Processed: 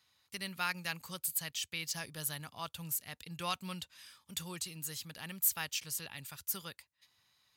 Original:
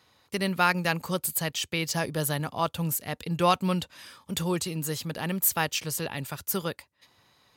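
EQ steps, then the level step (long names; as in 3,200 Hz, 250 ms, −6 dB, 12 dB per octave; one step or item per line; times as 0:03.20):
guitar amp tone stack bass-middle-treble 5-5-5
0.0 dB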